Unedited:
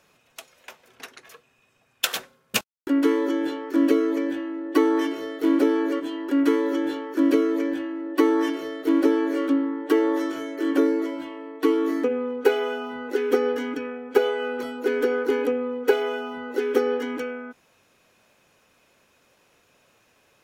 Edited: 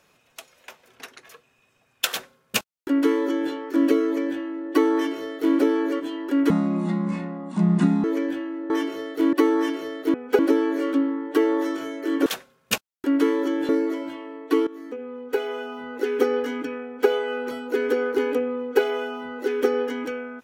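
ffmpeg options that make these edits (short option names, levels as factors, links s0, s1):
-filter_complex "[0:a]asplit=10[s0][s1][s2][s3][s4][s5][s6][s7][s8][s9];[s0]atrim=end=6.504[s10];[s1]atrim=start=6.5:end=7.47,asetpts=PTS-STARTPTS,asetrate=27783,aresample=44100[s11];[s2]atrim=start=7.466:end=8.132[s12];[s3]atrim=start=4.938:end=5.572[s13];[s4]atrim=start=8.128:end=8.942[s14];[s5]atrim=start=13.958:end=14.212[s15];[s6]atrim=start=8.938:end=10.812[s16];[s7]atrim=start=2.088:end=3.522[s17];[s8]atrim=start=10.808:end=11.79,asetpts=PTS-STARTPTS,afade=t=out:st=0.978:d=0.004:c=hsin:silence=0.125893[s18];[s9]atrim=start=11.79,asetpts=PTS-STARTPTS,afade=t=in:d=1.47:silence=0.125893[s19];[s10][s11]acrossfade=d=0.004:c1=hsin:c2=hsin[s20];[s20][s12]acrossfade=d=0.004:c1=hsin:c2=hsin[s21];[s21][s13]acrossfade=d=0.004:c1=hsin:c2=hsin[s22];[s22][s14]acrossfade=d=0.004:c1=hsin:c2=hsin[s23];[s23][s15]acrossfade=d=0.004:c1=hsin:c2=hsin[s24];[s24][s16]acrossfade=d=0.004:c1=hsin:c2=hsin[s25];[s25][s17]acrossfade=d=0.004:c1=hsin:c2=hsin[s26];[s18][s19]concat=n=2:v=0:a=1[s27];[s26][s27]acrossfade=d=0.004:c1=hsin:c2=hsin"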